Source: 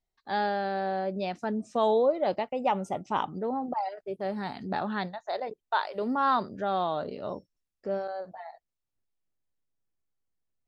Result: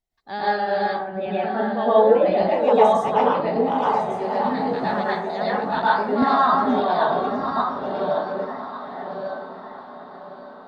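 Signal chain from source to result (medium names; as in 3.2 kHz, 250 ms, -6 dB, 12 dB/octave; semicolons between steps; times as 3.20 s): backward echo that repeats 577 ms, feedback 46%, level -1.5 dB; reverb removal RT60 1.7 s; 0.85–2.26 s: steep low-pass 3.6 kHz 72 dB/octave; echo that smears into a reverb 1060 ms, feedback 55%, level -13.5 dB; plate-style reverb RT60 0.63 s, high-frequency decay 0.45×, pre-delay 95 ms, DRR -8 dB; 6.22–6.80 s: three bands compressed up and down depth 70%; trim -1 dB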